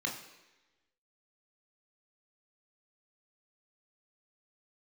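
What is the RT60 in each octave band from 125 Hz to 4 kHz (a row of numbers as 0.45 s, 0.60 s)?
0.85 s, 1.0 s, 1.1 s, 1.1 s, 1.2 s, 1.1 s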